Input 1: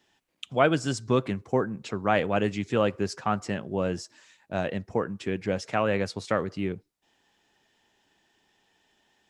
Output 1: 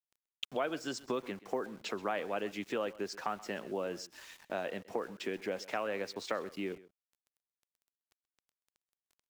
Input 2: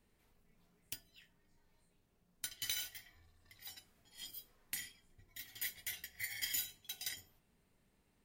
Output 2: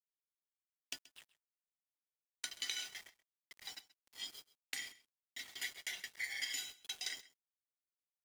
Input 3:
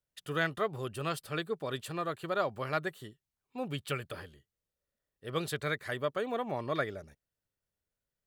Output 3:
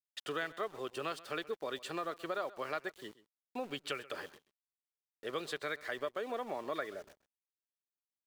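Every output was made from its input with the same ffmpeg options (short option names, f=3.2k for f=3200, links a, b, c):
-filter_complex "[0:a]acrossover=split=240 7900:gain=0.0708 1 0.0794[a][b][c];[a][b][c]amix=inputs=3:normalize=0,acompressor=threshold=-44dB:ratio=3,aeval=exprs='val(0)*gte(abs(val(0)),0.00119)':c=same,asplit=2[d][e];[e]aecho=0:1:130:0.112[f];[d][f]amix=inputs=2:normalize=0,volume=6dB"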